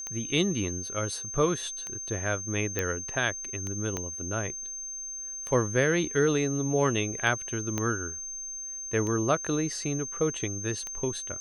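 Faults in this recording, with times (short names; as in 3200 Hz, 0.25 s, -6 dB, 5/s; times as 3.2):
tick 33 1/3 rpm -21 dBFS
tone 6300 Hz -35 dBFS
2.79 pop -13 dBFS
3.97 pop -17 dBFS
7.78 pop -15 dBFS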